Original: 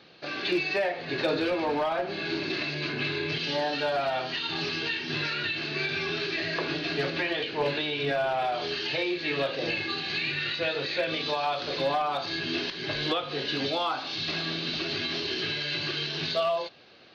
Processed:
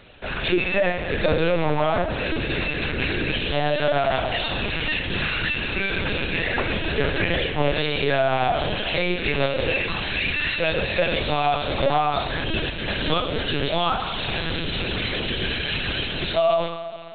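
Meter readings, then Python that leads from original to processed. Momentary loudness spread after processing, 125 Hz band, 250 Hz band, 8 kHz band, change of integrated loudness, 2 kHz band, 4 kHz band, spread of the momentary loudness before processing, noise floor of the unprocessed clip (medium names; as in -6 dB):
4 LU, +10.5 dB, +5.5 dB, no reading, +5.5 dB, +6.0 dB, +3.0 dB, 3 LU, -38 dBFS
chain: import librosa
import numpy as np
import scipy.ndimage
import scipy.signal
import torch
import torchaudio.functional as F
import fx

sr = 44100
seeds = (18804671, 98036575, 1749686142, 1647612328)

p1 = fx.quant_companded(x, sr, bits=4)
p2 = x + (p1 * librosa.db_to_amplitude(-11.5))
p3 = fx.rev_schroeder(p2, sr, rt60_s=2.2, comb_ms=29, drr_db=6.5)
p4 = fx.lpc_vocoder(p3, sr, seeds[0], excitation='pitch_kept', order=10)
y = p4 * librosa.db_to_amplitude(4.0)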